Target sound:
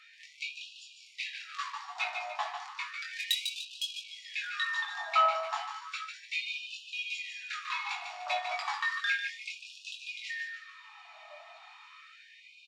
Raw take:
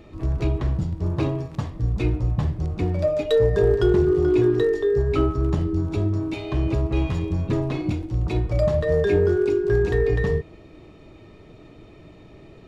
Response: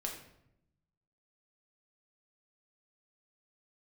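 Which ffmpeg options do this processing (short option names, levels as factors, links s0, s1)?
-filter_complex "[0:a]lowpass=6200,aecho=1:1:148|296|444|592|740:0.473|0.194|0.0795|0.0326|0.0134,asplit=2[s0][s1];[1:a]atrim=start_sample=2205,asetrate=52920,aresample=44100,adelay=7[s2];[s1][s2]afir=irnorm=-1:irlink=0,volume=0.596[s3];[s0][s3]amix=inputs=2:normalize=0,asettb=1/sr,asplit=3[s4][s5][s6];[s4]atrim=end=3.114[s7];[s5]atrim=start=3.11:end=4.08,asetpts=PTS-STARTPTS,afade=t=in:d=0.004:c=qsin,afade=t=out:st=0.966:d=0.004:c=qsin,adynamicsmooth=sensitivity=5:basefreq=1100[s8];[s6]atrim=start=4.076[s9];[s7][s8]acrossfade=d=0.004:c1=hsin:c2=qsin[s10];[s10][s9]acrossfade=d=0.004:c1=qsin:c2=hsin,flanger=delay=19:depth=4.4:speed=0.48,afftfilt=real='re*gte(b*sr/1024,600*pow(2500/600,0.5+0.5*sin(2*PI*0.33*pts/sr)))':imag='im*gte(b*sr/1024,600*pow(2500/600,0.5+0.5*sin(2*PI*0.33*pts/sr)))':win_size=1024:overlap=0.75,volume=2.24"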